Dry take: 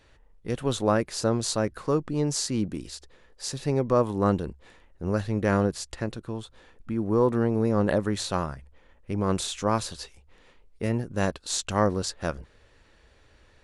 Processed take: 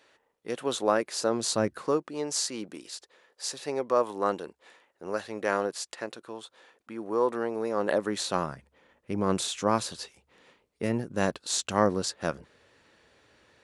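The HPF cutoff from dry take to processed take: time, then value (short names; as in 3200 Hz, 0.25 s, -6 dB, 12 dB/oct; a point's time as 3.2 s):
1.28 s 340 Hz
1.63 s 110 Hz
2.08 s 460 Hz
7.73 s 460 Hz
8.54 s 150 Hz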